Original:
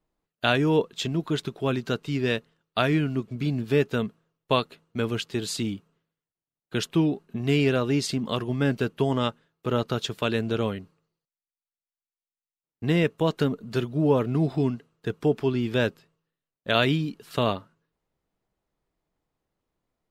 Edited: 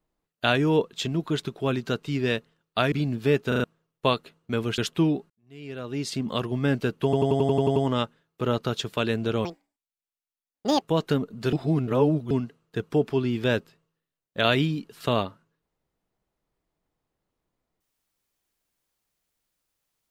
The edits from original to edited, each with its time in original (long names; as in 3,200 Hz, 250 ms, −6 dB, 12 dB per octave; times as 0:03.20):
0:02.92–0:03.38: remove
0:03.94: stutter in place 0.04 s, 4 plays
0:05.24–0:06.75: remove
0:07.27–0:08.24: fade in quadratic
0:09.01: stutter 0.09 s, 9 plays
0:10.70–0:13.12: play speed 177%
0:13.83–0:14.61: reverse